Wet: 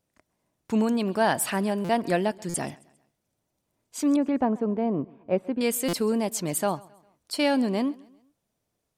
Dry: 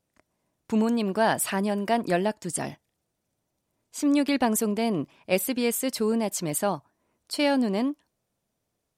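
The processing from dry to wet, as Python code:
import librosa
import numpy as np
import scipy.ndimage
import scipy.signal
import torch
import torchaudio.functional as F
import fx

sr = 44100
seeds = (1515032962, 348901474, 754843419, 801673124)

p1 = fx.lowpass(x, sr, hz=1100.0, slope=12, at=(4.16, 5.61))
p2 = p1 + fx.echo_feedback(p1, sr, ms=134, feedback_pct=43, wet_db=-23.5, dry=0)
y = fx.buffer_glitch(p2, sr, at_s=(1.84, 2.49, 5.88), block=256, repeats=8)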